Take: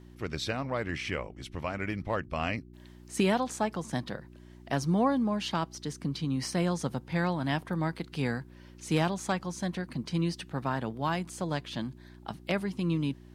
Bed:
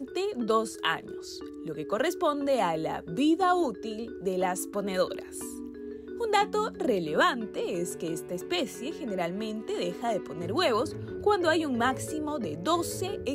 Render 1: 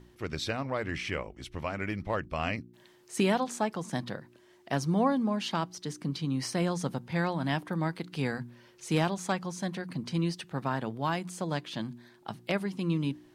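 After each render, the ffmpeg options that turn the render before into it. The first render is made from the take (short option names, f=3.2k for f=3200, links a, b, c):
-af "bandreject=f=60:t=h:w=4,bandreject=f=120:t=h:w=4,bandreject=f=180:t=h:w=4,bandreject=f=240:t=h:w=4,bandreject=f=300:t=h:w=4"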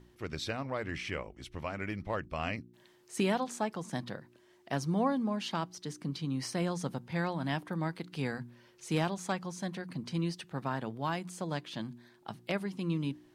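-af "volume=-3.5dB"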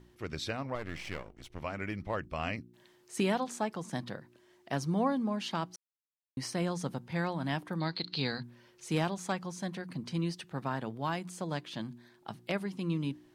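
-filter_complex "[0:a]asettb=1/sr,asplit=3[a][b][c];[a]atrim=end=0.754[d];[b]atrim=start=0.75:end=1.61,asetpts=PTS-STARTPTS,afade=t=in:d=0.004:c=qsin,afade=t=out:st=0.856:d=0.004:c=qsin,aeval=exprs='if(lt(val(0),0),0.251*val(0),val(0))':c=same[e];[c]atrim=start=1.606[f];[d][e]acrossfade=d=0.004:c1=hsin:c2=qsin[g];[g][f]acrossfade=d=0.004:c1=qsin:c2=hsin,asettb=1/sr,asplit=3[h][i][j];[h]atrim=end=7.804[k];[i]atrim=start=7.8:end=8.43,asetpts=PTS-STARTPTS,afade=t=in:d=0.004:c=qsin,afade=t=out:st=0.626:d=0.004:c=qsin,lowpass=f=4.2k:t=q:w=15[l];[j]atrim=start=8.426[m];[k][l]acrossfade=d=0.004:c1=hsin:c2=qsin[n];[n][m]acrossfade=d=0.004:c1=qsin:c2=hsin,asplit=3[o][p][q];[o]atrim=end=5.76,asetpts=PTS-STARTPTS,afade=t=out:st=5.756:d=0.004:c=hsin[r];[p]atrim=start=5.76:end=6.37,asetpts=PTS-STARTPTS,volume=0[s];[q]atrim=start=6.37,asetpts=PTS-STARTPTS,afade=t=in:d=0.004:c=hsin[t];[r][s][t]concat=n=3:v=0:a=1"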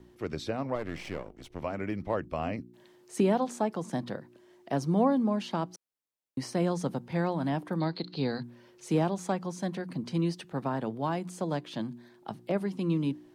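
-filter_complex "[0:a]acrossover=split=180|870[a][b][c];[b]acontrast=66[d];[c]alimiter=level_in=8dB:limit=-24dB:level=0:latency=1:release=120,volume=-8dB[e];[a][d][e]amix=inputs=3:normalize=0"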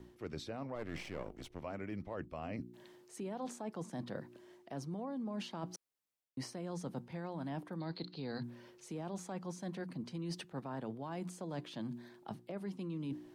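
-af "alimiter=limit=-23dB:level=0:latency=1:release=39,areverse,acompressor=threshold=-39dB:ratio=6,areverse"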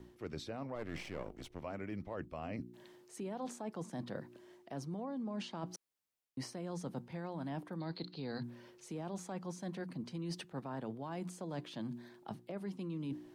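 -filter_complex "[0:a]asettb=1/sr,asplit=3[a][b][c];[a]atrim=end=4.964[d];[b]atrim=start=4.96:end=5.66,asetpts=PTS-STARTPTS,afade=t=in:d=0.004:c=qsin,afade=t=out:st=0.696:d=0.004:c=qsin,lowpass=f=9.4k:w=0.5412,lowpass=f=9.4k:w=1.3066[e];[c]atrim=start=5.656[f];[d][e]acrossfade=d=0.004:c1=hsin:c2=qsin[g];[g][f]acrossfade=d=0.004:c1=qsin:c2=hsin"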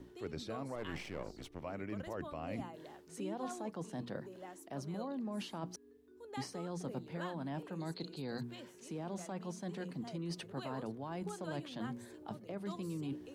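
-filter_complex "[1:a]volume=-22.5dB[a];[0:a][a]amix=inputs=2:normalize=0"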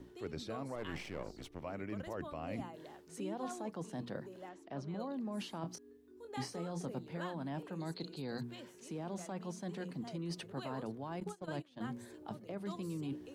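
-filter_complex "[0:a]asettb=1/sr,asplit=3[a][b][c];[a]atrim=end=4.494[d];[b]atrim=start=4.49:end=5,asetpts=PTS-STARTPTS,afade=t=in:d=0.004:c=qsin,afade=t=out:st=0.506:d=0.004:c=qsin,lowpass=4.3k[e];[c]atrim=start=4.996[f];[d][e]acrossfade=d=0.004:c1=hsin:c2=qsin[g];[g][f]acrossfade=d=0.004:c1=qsin:c2=hsin,asettb=1/sr,asplit=3[h][i][j];[h]atrim=end=5.614[k];[i]atrim=start=5.61:end=6.86,asetpts=PTS-STARTPTS,afade=t=in:d=0.004:c=qsin,afade=t=out:st=1.246:d=0.004:c=qsin,asplit=2[l][m];[m]adelay=24,volume=-6.5dB[n];[l][n]amix=inputs=2:normalize=0,atrim=end_sample=55125[o];[j]atrim=start=6.856[p];[k][o]acrossfade=d=0.004:c1=hsin:c2=qsin[q];[q][p]acrossfade=d=0.004:c1=qsin:c2=hsin,asettb=1/sr,asplit=3[r][s][t];[r]atrim=end=11.204[u];[s]atrim=start=11.2:end=11.82,asetpts=PTS-STARTPTS,afade=t=in:d=0.004:c=qsin,afade=t=out:st=0.616:d=0.004:c=qsin,agate=range=-18dB:threshold=-43dB:ratio=16:release=100:detection=peak[v];[t]atrim=start=11.816[w];[u][v]acrossfade=d=0.004:c1=hsin:c2=qsin[x];[x][w]acrossfade=d=0.004:c1=qsin:c2=hsin"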